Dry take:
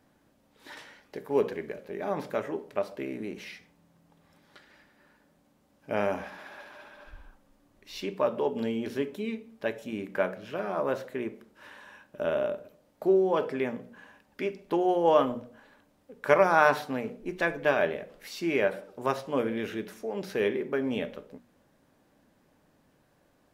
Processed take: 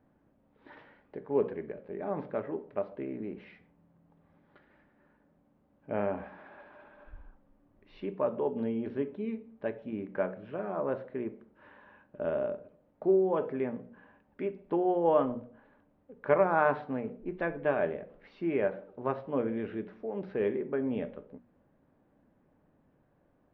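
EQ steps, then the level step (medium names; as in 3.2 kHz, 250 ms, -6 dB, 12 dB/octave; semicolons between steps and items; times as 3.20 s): distance through air 250 m; tape spacing loss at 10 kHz 44 dB; treble shelf 3.4 kHz +6.5 dB; 0.0 dB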